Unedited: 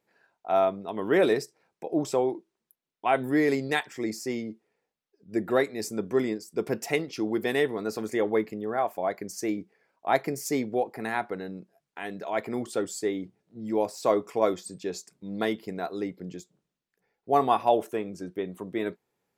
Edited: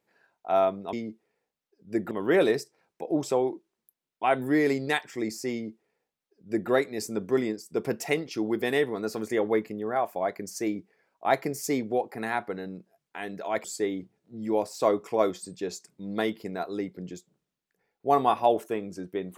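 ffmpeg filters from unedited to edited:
-filter_complex "[0:a]asplit=4[s0][s1][s2][s3];[s0]atrim=end=0.932[s4];[s1]atrim=start=4.338:end=5.522[s5];[s2]atrim=start=0.928:end=12.462[s6];[s3]atrim=start=12.868[s7];[s4][s5]acrossfade=d=0.004:c1=hsin:c2=hsin[s8];[s8][s6]acrossfade=d=0.004:c1=hsin:c2=hsin[s9];[s9][s7]acrossfade=d=0.004:c1=hsin:c2=hsin"

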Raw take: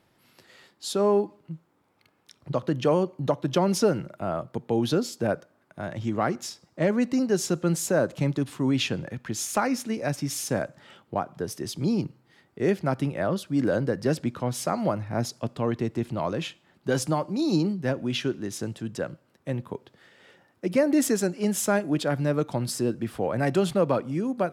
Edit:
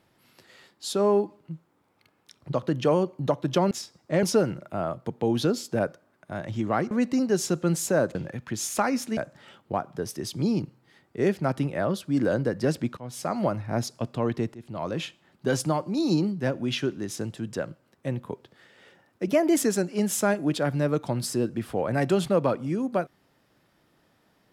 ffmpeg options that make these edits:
-filter_complex "[0:a]asplit=10[s0][s1][s2][s3][s4][s5][s6][s7][s8][s9];[s0]atrim=end=3.712[s10];[s1]atrim=start=6.388:end=6.912[s11];[s2]atrim=start=3.708:end=6.392[s12];[s3]atrim=start=6.908:end=8.152[s13];[s4]atrim=start=8.928:end=9.952[s14];[s5]atrim=start=10.588:end=14.39,asetpts=PTS-STARTPTS,afade=t=out:st=3.798:d=0.004:c=hsin:silence=0.125893[s15];[s6]atrim=start=14.39:end=15.96,asetpts=PTS-STARTPTS,afade=t=in:d=0.42:silence=0.125893,afade=t=out:st=1.566:d=0.004:c=hsin:silence=0.0944061[s16];[s7]atrim=start=15.96:end=20.704,asetpts=PTS-STARTPTS,afade=t=in:d=0.45:silence=0.0944061[s17];[s8]atrim=start=20.7:end=21.02,asetpts=PTS-STARTPTS,asetrate=48951,aresample=44100[s18];[s9]atrim=start=21.016[s19];[s10][s11]acrossfade=d=0.004:c1=hsin:c2=hsin[s20];[s20][s12]acrossfade=d=0.004:c1=hsin:c2=hsin[s21];[s21][s13]acrossfade=d=0.004:c1=hsin:c2=hsin[s22];[s22][s14]acrossfade=d=0.004:c1=hsin:c2=hsin[s23];[s15][s16][s17]concat=n=3:v=0:a=1[s24];[s23][s24]acrossfade=d=0.004:c1=hsin:c2=hsin[s25];[s25][s18]acrossfade=d=0.004:c1=hsin:c2=hsin[s26];[s26][s19]acrossfade=d=0.004:c1=hsin:c2=hsin"

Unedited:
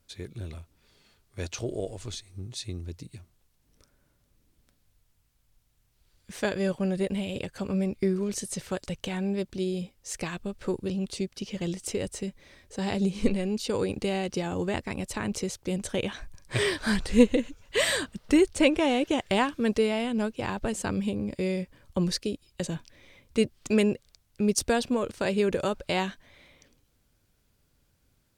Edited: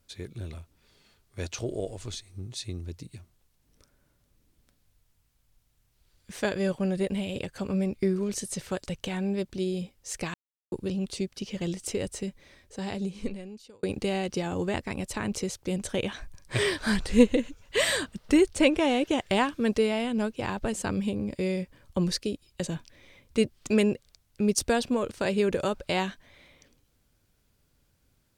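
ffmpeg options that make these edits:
-filter_complex "[0:a]asplit=4[s0][s1][s2][s3];[s0]atrim=end=10.34,asetpts=PTS-STARTPTS,afade=t=out:st=10.336:d=0.004:c=hsin[s4];[s1]atrim=start=10.34:end=10.72,asetpts=PTS-STARTPTS,volume=0[s5];[s2]atrim=start=10.72:end=13.83,asetpts=PTS-STARTPTS,afade=t=in:d=0.004:c=hsin,afade=t=out:st=1.56:d=1.55[s6];[s3]atrim=start=13.83,asetpts=PTS-STARTPTS,afade=t=in:d=0.004:c=hsin[s7];[s4][s5][s6][s7]concat=n=4:v=0:a=1"

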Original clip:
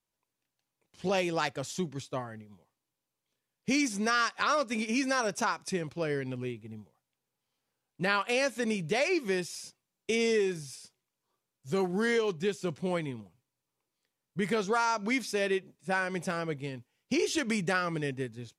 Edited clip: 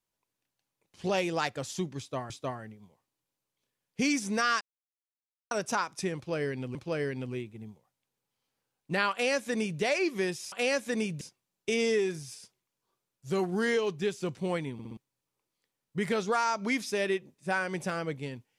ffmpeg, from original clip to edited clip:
-filter_complex "[0:a]asplit=11[s0][s1][s2][s3][s4][s5][s6][s7][s8][s9][s10];[s0]atrim=end=2.302[s11];[s1]atrim=start=1.988:end=4.3,asetpts=PTS-STARTPTS,afade=t=out:st=2.308:d=0.004:c=hsin[s12];[s2]atrim=start=4.3:end=5.2,asetpts=PTS-STARTPTS,volume=0[s13];[s3]atrim=start=5.2:end=6.442,asetpts=PTS-STARTPTS,afade=t=in:d=0.004:c=hsin[s14];[s4]atrim=start=5.848:end=9.622[s15];[s5]atrim=start=8.218:end=8.912[s16];[s6]atrim=start=9.618:end=13.202[s17];[s7]atrim=start=13.138:end=13.202[s18];[s8]atrim=start=13.138:end=13.202[s19];[s9]atrim=start=13.138:end=13.202[s20];[s10]atrim=start=13.378[s21];[s12][s13][s14]concat=n=3:v=0:a=1[s22];[s11][s22]acrossfade=d=0.004:c1=hsin:c2=hsin[s23];[s23][s15]acrossfade=d=0.004:c1=hsin:c2=hsin[s24];[s24][s16]acrossfade=d=0.004:c1=hsin:c2=hsin[s25];[s25][s17]acrossfade=d=0.004:c1=hsin:c2=hsin[s26];[s26][s18]acrossfade=d=0.004:c1=hsin:c2=hsin[s27];[s27][s19]acrossfade=d=0.004:c1=hsin:c2=hsin[s28];[s28][s20]acrossfade=d=0.004:c1=hsin:c2=hsin[s29];[s29][s21]acrossfade=d=0.004:c1=hsin:c2=hsin"

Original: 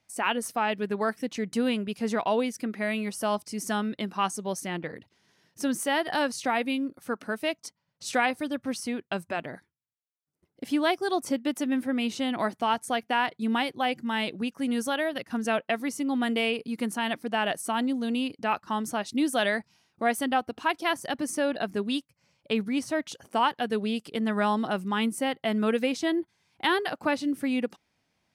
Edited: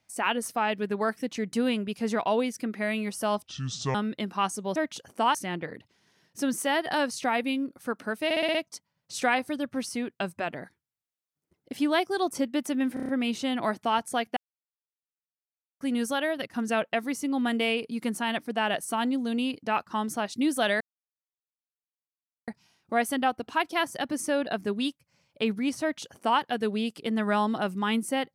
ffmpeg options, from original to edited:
-filter_complex "[0:a]asplit=18[s0][s1][s2][s3][s4][s5][s6][s7][s8][s9][s10][s11][s12][s13][s14][s15][s16][s17];[s0]atrim=end=3.434[s18];[s1]atrim=start=3.43:end=3.75,asetpts=PTS-STARTPTS,asetrate=27342,aresample=44100,atrim=end_sample=22761,asetpts=PTS-STARTPTS[s19];[s2]atrim=start=3.746:end=4.562[s20];[s3]atrim=start=22.908:end=23.502[s21];[s4]atrim=start=4.558:end=7.522[s22];[s5]atrim=start=7.458:end=7.522[s23];[s6]atrim=start=7.458:end=7.522[s24];[s7]atrim=start=7.458:end=7.522[s25];[s8]atrim=start=7.458:end=7.522[s26];[s9]atrim=start=7.458:end=11.882[s27];[s10]atrim=start=11.848:end=11.882[s28];[s11]atrim=start=11.848:end=11.882[s29];[s12]atrim=start=11.848:end=11.882[s30];[s13]atrim=start=11.848:end=11.882[s31];[s14]atrim=start=11.848:end=13.13,asetpts=PTS-STARTPTS,afade=t=out:st=1.278:d=0.004:c=hsin[s32];[s15]atrim=start=13.13:end=14.57,asetpts=PTS-STARTPTS,volume=0[s33];[s16]atrim=start=14.57:end=19.57,asetpts=PTS-STARTPTS,afade=t=in:d=0.004:c=hsin,afade=t=out:st=4.996:d=0.004:c=hsin,apad=pad_dur=1.67[s34];[s17]atrim=start=19.57,asetpts=PTS-STARTPTS,afade=t=in:d=0.004:c=hsin[s35];[s18][s19]acrossfade=d=0.004:c1=hsin:c2=hsin[s36];[s36][s20]acrossfade=d=0.004:c1=hsin:c2=hsin[s37];[s37][s21]acrossfade=d=0.004:c1=hsin:c2=hsin[s38];[s38][s22]acrossfade=d=0.004:c1=hsin:c2=hsin[s39];[s39][s23]acrossfade=d=0.004:c1=hsin:c2=hsin[s40];[s40][s24]acrossfade=d=0.004:c1=hsin:c2=hsin[s41];[s41][s25]acrossfade=d=0.004:c1=hsin:c2=hsin[s42];[s42][s26]acrossfade=d=0.004:c1=hsin:c2=hsin[s43];[s43][s27]acrossfade=d=0.004:c1=hsin:c2=hsin[s44];[s44][s28]acrossfade=d=0.004:c1=hsin:c2=hsin[s45];[s45][s29]acrossfade=d=0.004:c1=hsin:c2=hsin[s46];[s46][s30]acrossfade=d=0.004:c1=hsin:c2=hsin[s47];[s47][s31]acrossfade=d=0.004:c1=hsin:c2=hsin[s48];[s32][s33][s34][s35]concat=n=4:v=0:a=1[s49];[s48][s49]acrossfade=d=0.004:c1=hsin:c2=hsin"

